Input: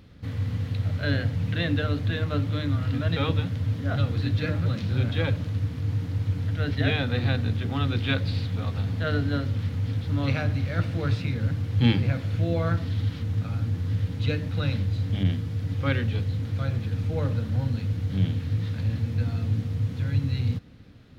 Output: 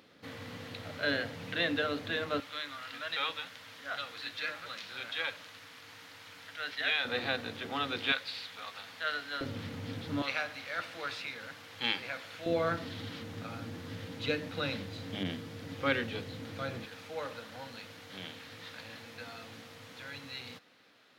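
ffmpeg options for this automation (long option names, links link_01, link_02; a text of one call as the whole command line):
ffmpeg -i in.wav -af "asetnsamples=nb_out_samples=441:pad=0,asendcmd='2.4 highpass f 1100;7.05 highpass f 480;8.12 highpass f 1100;9.41 highpass f 270;10.22 highpass f 850;12.46 highpass f 330;16.85 highpass f 700',highpass=400" out.wav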